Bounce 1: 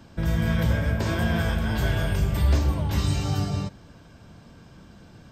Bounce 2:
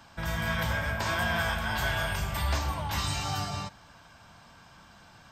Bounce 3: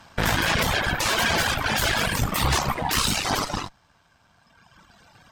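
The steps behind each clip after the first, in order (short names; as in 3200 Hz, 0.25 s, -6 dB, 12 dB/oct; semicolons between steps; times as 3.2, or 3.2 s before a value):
resonant low shelf 600 Hz -11 dB, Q 1.5; gain +1.5 dB
added harmonics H 8 -6 dB, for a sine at -15.5 dBFS; reverb removal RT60 2 s; gain +4 dB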